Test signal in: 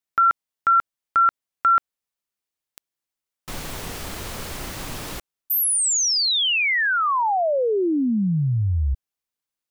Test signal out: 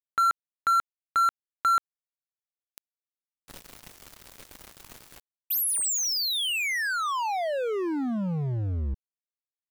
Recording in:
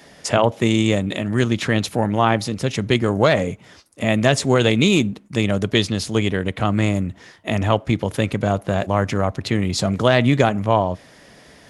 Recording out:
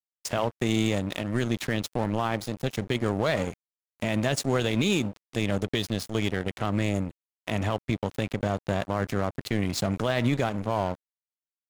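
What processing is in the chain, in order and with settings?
dead-zone distortion −28 dBFS
brickwall limiter −10.5 dBFS
high-shelf EQ 10,000 Hz +3 dB
level −3.5 dB

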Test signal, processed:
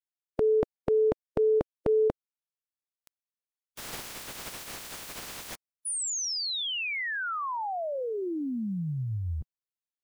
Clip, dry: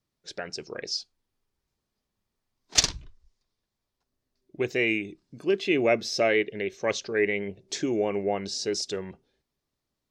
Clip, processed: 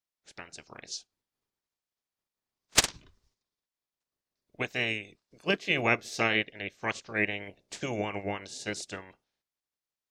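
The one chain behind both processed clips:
ceiling on every frequency bin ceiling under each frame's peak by 21 dB
expander for the loud parts 1.5 to 1, over −39 dBFS
level −1 dB

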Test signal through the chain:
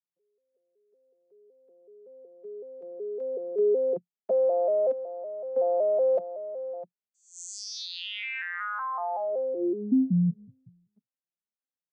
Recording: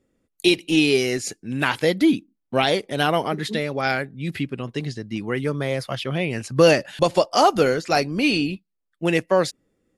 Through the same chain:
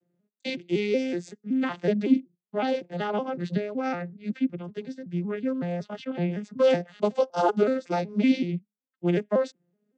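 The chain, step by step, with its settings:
vocoder with an arpeggio as carrier minor triad, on F3, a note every 187 ms
level −4.5 dB

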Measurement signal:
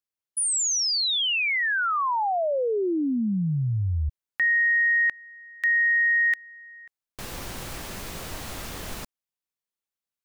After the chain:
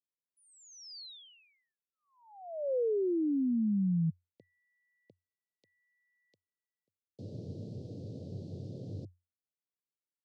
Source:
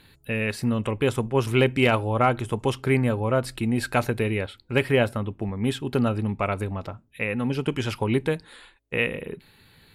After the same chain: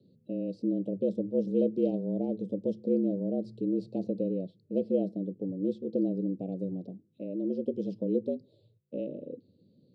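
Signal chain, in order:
Chebyshev band-stop filter 440–4,300 Hz, order 3
head-to-tape spacing loss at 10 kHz 41 dB
frequency shifter +88 Hz
level −3.5 dB

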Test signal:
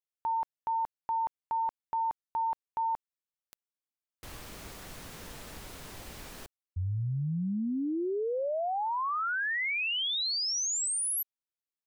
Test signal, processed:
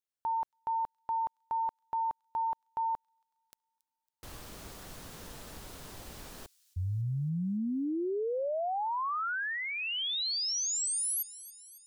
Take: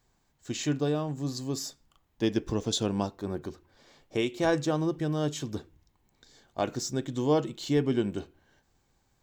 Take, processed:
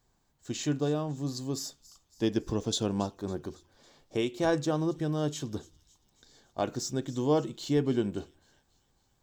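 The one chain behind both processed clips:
parametric band 2,200 Hz −4 dB 0.79 octaves
on a send: delay with a high-pass on its return 277 ms, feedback 57%, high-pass 4,400 Hz, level −17 dB
on the sum: level −1 dB

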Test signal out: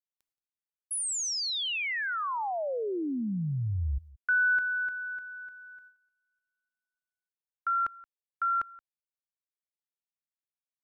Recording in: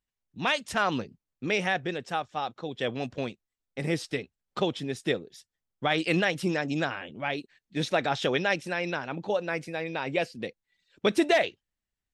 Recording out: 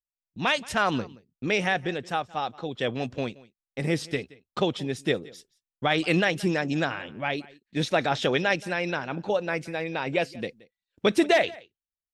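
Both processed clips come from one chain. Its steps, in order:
noise gate with hold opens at −49 dBFS
low-shelf EQ 86 Hz +5 dB
on a send: single-tap delay 175 ms −22 dB
on the sum: level +2 dB

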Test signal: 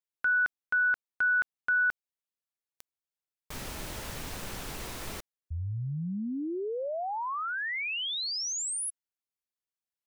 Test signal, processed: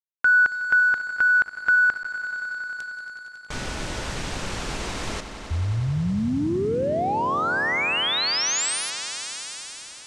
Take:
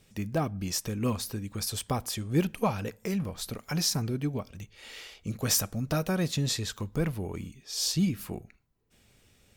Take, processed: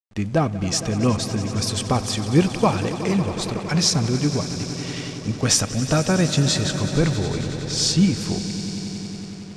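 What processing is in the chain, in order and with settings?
echo that builds up and dies away 92 ms, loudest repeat 5, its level −15.5 dB
bit reduction 10 bits
slack as between gear wheels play −45.5 dBFS
low-pass filter 8,500 Hz 24 dB per octave
level +9 dB

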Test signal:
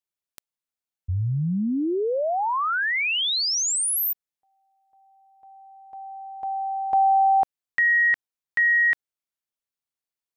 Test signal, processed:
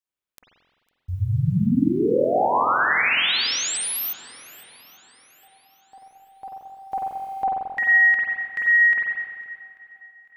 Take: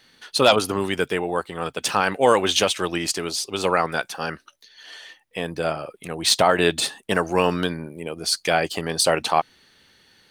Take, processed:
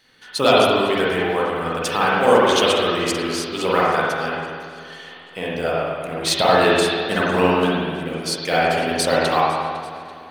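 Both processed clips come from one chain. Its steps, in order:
one scale factor per block 7 bits
feedback echo with a long and a short gap by turns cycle 840 ms, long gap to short 1.5 to 1, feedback 31%, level −20.5 dB
spring reverb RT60 1.7 s, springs 44/48 ms, chirp 65 ms, DRR −6 dB
level −3 dB

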